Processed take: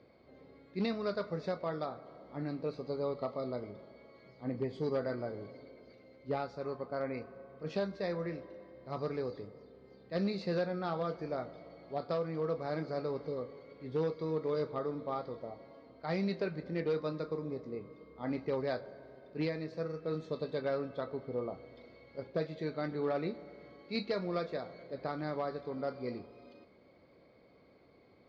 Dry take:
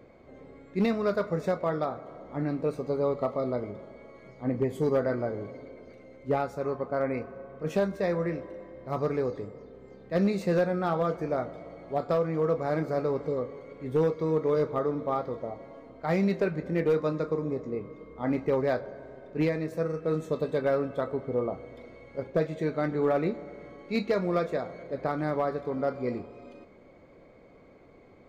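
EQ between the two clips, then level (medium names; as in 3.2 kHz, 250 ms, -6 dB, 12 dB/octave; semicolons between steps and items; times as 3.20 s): high-pass 59 Hz; resonant low-pass 4.6 kHz, resonance Q 4.7; distance through air 70 m; -8.0 dB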